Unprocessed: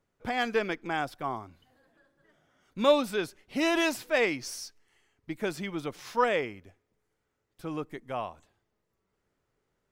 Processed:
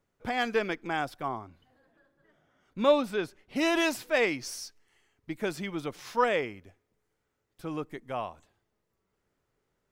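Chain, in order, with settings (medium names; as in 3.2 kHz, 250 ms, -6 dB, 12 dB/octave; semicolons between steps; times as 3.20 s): 1.28–3.56 s: treble shelf 3.9 kHz -8 dB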